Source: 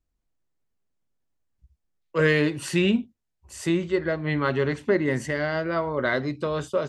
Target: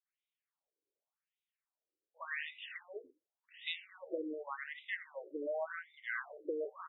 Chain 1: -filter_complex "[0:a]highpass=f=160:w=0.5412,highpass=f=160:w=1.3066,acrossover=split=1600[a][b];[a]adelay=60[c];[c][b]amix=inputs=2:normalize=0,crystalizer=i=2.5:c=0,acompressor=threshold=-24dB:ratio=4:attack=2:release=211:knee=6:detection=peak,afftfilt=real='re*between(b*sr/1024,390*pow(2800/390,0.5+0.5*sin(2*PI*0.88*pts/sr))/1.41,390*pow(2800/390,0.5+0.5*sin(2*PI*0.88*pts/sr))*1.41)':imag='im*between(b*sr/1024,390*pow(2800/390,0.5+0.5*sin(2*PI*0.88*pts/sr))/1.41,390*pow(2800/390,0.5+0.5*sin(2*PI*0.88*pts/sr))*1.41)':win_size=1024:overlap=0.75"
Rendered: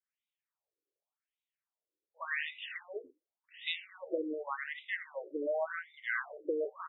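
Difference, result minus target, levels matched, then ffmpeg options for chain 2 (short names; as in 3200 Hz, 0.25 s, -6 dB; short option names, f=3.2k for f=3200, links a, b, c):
compressor: peak gain reduction -5 dB
-filter_complex "[0:a]highpass=f=160:w=0.5412,highpass=f=160:w=1.3066,acrossover=split=1600[a][b];[a]adelay=60[c];[c][b]amix=inputs=2:normalize=0,crystalizer=i=2.5:c=0,acompressor=threshold=-30.5dB:ratio=4:attack=2:release=211:knee=6:detection=peak,afftfilt=real='re*between(b*sr/1024,390*pow(2800/390,0.5+0.5*sin(2*PI*0.88*pts/sr))/1.41,390*pow(2800/390,0.5+0.5*sin(2*PI*0.88*pts/sr))*1.41)':imag='im*between(b*sr/1024,390*pow(2800/390,0.5+0.5*sin(2*PI*0.88*pts/sr))/1.41,390*pow(2800/390,0.5+0.5*sin(2*PI*0.88*pts/sr))*1.41)':win_size=1024:overlap=0.75"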